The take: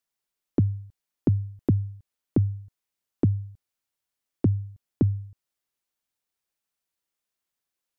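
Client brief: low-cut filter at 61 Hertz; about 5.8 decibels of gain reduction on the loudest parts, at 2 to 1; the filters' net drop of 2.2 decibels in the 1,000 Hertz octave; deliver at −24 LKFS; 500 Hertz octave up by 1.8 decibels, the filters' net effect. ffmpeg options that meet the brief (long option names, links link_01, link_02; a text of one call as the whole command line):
ffmpeg -i in.wav -af "highpass=61,equalizer=frequency=500:width_type=o:gain=3.5,equalizer=frequency=1000:width_type=o:gain=-5,acompressor=threshold=-27dB:ratio=2,volume=9dB" out.wav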